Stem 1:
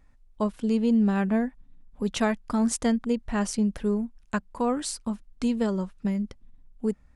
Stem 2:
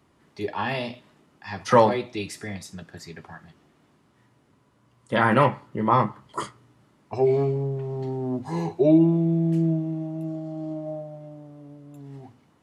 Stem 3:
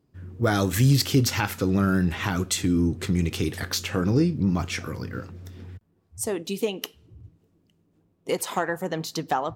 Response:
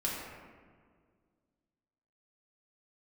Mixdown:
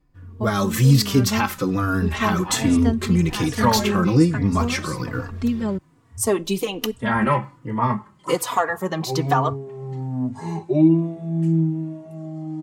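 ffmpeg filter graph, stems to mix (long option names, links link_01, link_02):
-filter_complex "[0:a]highshelf=frequency=5200:gain=-9.5,volume=-3.5dB,asplit=3[link_01][link_02][link_03];[link_01]atrim=end=5.78,asetpts=PTS-STARTPTS,afade=type=out:start_time=5.776:duration=0.004:curve=hsin[link_04];[link_02]atrim=start=5.78:end=6.39,asetpts=PTS-STARTPTS,volume=0[link_05];[link_03]atrim=start=6.39,asetpts=PTS-STARTPTS,afade=type=in:duration=0.004:curve=hsin[link_06];[link_04][link_05][link_06]concat=n=3:v=0:a=1[link_07];[1:a]equalizer=frequency=125:width_type=o:width=1:gain=9,equalizer=frequency=250:width_type=o:width=1:gain=7,equalizer=frequency=1000:width_type=o:width=1:gain=6,equalizer=frequency=2000:width_type=o:width=1:gain=6,equalizer=frequency=8000:width_type=o:width=1:gain=11,adelay=1900,volume=-11.5dB[link_08];[2:a]equalizer=frequency=1100:width=4.3:gain=9.5,volume=1dB[link_09];[link_07][link_08][link_09]amix=inputs=3:normalize=0,dynaudnorm=framelen=220:gausssize=5:maxgain=8dB,asplit=2[link_10][link_11];[link_11]adelay=3.5,afreqshift=-1.2[link_12];[link_10][link_12]amix=inputs=2:normalize=1"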